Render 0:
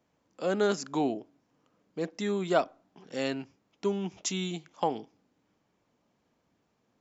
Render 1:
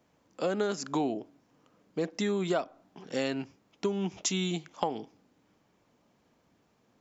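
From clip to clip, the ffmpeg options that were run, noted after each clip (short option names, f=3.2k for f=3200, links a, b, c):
-af "acompressor=threshold=-31dB:ratio=6,volume=5dB"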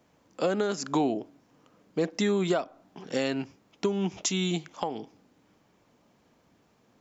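-af "alimiter=limit=-19dB:level=0:latency=1:release=327,volume=4dB"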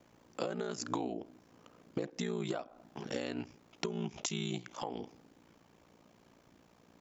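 -af "acompressor=threshold=-35dB:ratio=8,aeval=exprs='val(0)*sin(2*PI*29*n/s)':c=same,volume=4dB"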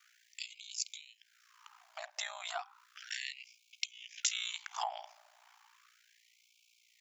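-af "afftfilt=real='re*gte(b*sr/1024,560*pow(2200/560,0.5+0.5*sin(2*PI*0.34*pts/sr)))':imag='im*gte(b*sr/1024,560*pow(2200/560,0.5+0.5*sin(2*PI*0.34*pts/sr)))':win_size=1024:overlap=0.75,volume=5.5dB"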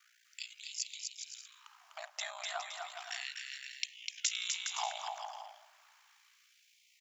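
-af "aecho=1:1:250|412.5|518.1|586.8|631.4:0.631|0.398|0.251|0.158|0.1,volume=-1dB"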